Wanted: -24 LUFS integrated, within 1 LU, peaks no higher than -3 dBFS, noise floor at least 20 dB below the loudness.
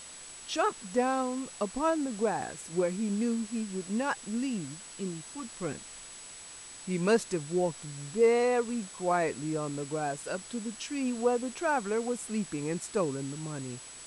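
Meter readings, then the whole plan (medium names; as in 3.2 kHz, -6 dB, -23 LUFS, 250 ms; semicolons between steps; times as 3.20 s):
steady tone 7.9 kHz; tone level -47 dBFS; noise floor -47 dBFS; noise floor target -52 dBFS; loudness -31.5 LUFS; peak level -13.5 dBFS; loudness target -24.0 LUFS
-> band-stop 7.9 kHz, Q 30; noise reduction 6 dB, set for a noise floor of -47 dBFS; trim +7.5 dB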